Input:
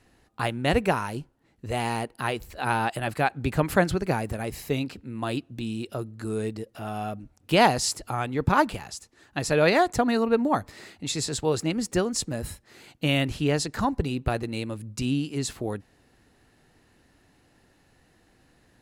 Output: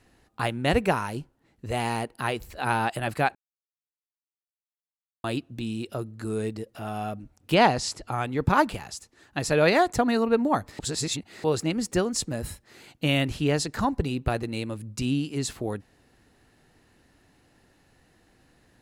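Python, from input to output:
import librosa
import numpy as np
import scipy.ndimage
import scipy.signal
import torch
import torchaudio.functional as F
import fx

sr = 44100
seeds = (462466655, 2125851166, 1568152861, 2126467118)

y = fx.air_absorb(x, sr, metres=64.0, at=(7.54, 8.12))
y = fx.edit(y, sr, fx.silence(start_s=3.35, length_s=1.89),
    fx.reverse_span(start_s=10.79, length_s=0.65), tone=tone)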